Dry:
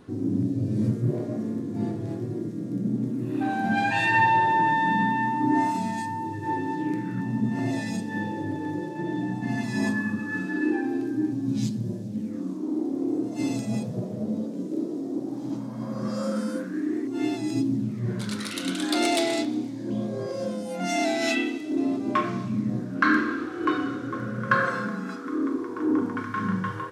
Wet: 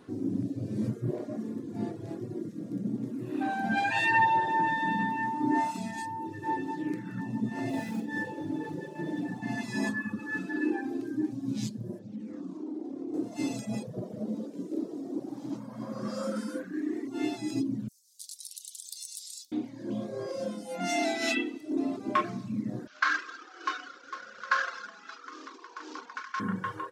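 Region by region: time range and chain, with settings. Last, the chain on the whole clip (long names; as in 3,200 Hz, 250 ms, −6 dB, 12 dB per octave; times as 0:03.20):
0:07.69–0:09.40: running median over 9 samples + flutter between parallel walls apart 7.7 metres, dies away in 0.51 s
0:11.99–0:13.14: Bessel low-pass filter 5,800 Hz + downward compressor 2.5 to 1, threshold −30 dBFS
0:17.88–0:19.52: inverse Chebyshev high-pass filter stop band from 1,500 Hz, stop band 60 dB + high-shelf EQ 8,900 Hz +11.5 dB + downward compressor 4 to 1, threshold −35 dBFS
0:22.87–0:26.40: variable-slope delta modulation 32 kbit/s + high-pass filter 960 Hz
whole clip: reverb reduction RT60 0.85 s; high-pass filter 200 Hz 6 dB per octave; level −1.5 dB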